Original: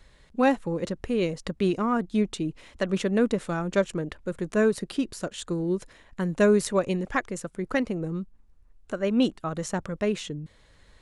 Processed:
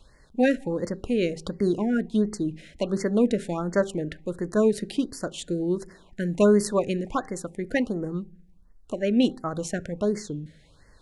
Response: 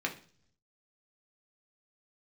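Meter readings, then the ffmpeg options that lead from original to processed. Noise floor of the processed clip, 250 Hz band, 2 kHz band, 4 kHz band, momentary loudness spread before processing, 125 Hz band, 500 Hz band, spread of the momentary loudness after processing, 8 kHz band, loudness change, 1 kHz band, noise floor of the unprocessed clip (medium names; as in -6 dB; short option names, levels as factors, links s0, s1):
-56 dBFS, +1.5 dB, -2.5 dB, -0.5 dB, 11 LU, 0.0 dB, +1.0 dB, 11 LU, +0.5 dB, +1.0 dB, -2.5 dB, -57 dBFS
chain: -filter_complex "[0:a]bandreject=f=390.3:t=h:w=4,bandreject=f=780.6:t=h:w=4,asplit=2[s0][s1];[1:a]atrim=start_sample=2205,lowshelf=f=260:g=7.5[s2];[s1][s2]afir=irnorm=-1:irlink=0,volume=0.119[s3];[s0][s3]amix=inputs=2:normalize=0,afftfilt=real='re*(1-between(b*sr/1024,960*pow(3100/960,0.5+0.5*sin(2*PI*1.4*pts/sr))/1.41,960*pow(3100/960,0.5+0.5*sin(2*PI*1.4*pts/sr))*1.41))':imag='im*(1-between(b*sr/1024,960*pow(3100/960,0.5+0.5*sin(2*PI*1.4*pts/sr))/1.41,960*pow(3100/960,0.5+0.5*sin(2*PI*1.4*pts/sr))*1.41))':win_size=1024:overlap=0.75"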